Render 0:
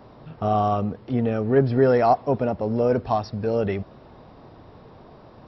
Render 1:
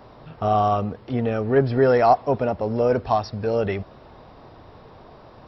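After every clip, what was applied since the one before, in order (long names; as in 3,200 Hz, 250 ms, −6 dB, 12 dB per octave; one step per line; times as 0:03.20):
parametric band 200 Hz −5.5 dB 2.3 octaves
level +3.5 dB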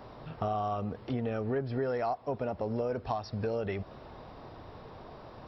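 downward compressor 6 to 1, threshold −28 dBFS, peak gain reduction 16 dB
level −2 dB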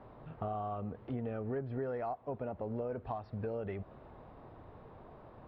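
high-frequency loss of the air 470 metres
level −4.5 dB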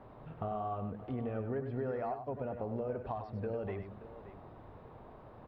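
multi-tap delay 99/577 ms −8/−15 dB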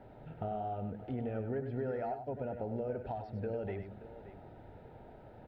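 Butterworth band-reject 1,100 Hz, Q 3.2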